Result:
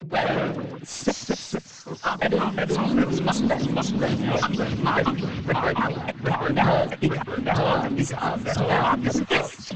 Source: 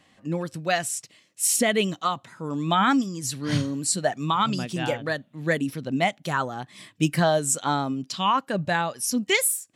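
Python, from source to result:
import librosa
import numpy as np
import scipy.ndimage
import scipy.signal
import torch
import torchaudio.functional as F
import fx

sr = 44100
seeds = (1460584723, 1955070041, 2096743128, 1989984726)

p1 = fx.block_reorder(x, sr, ms=276.0, group=3)
p2 = fx.spec_repair(p1, sr, seeds[0], start_s=2.34, length_s=0.66, low_hz=680.0, high_hz=3400.0, source='both')
p3 = np.where(np.abs(p2) >= 10.0 ** (-25.5 / 20.0), p2, 0.0)
p4 = p2 + (p3 * 10.0 ** (-6.0 / 20.0))
p5 = fx.noise_vocoder(p4, sr, seeds[1], bands=16)
p6 = fx.tube_stage(p5, sr, drive_db=10.0, bias=0.4)
p7 = fx.echo_pitch(p6, sr, ms=91, semitones=-2, count=2, db_per_echo=-3.0)
p8 = fx.air_absorb(p7, sr, metres=150.0)
y = p8 + fx.echo_wet_highpass(p8, sr, ms=169, feedback_pct=77, hz=2000.0, wet_db=-19.5, dry=0)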